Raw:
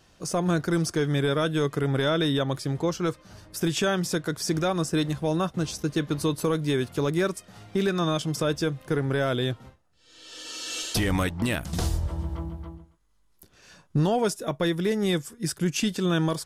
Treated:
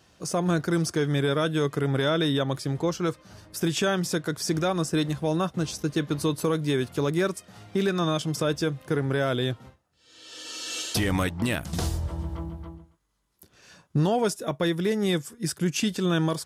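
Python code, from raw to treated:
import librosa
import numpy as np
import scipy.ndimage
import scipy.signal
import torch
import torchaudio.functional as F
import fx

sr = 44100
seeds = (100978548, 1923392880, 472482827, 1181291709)

y = scipy.signal.sosfilt(scipy.signal.butter(2, 59.0, 'highpass', fs=sr, output='sos'), x)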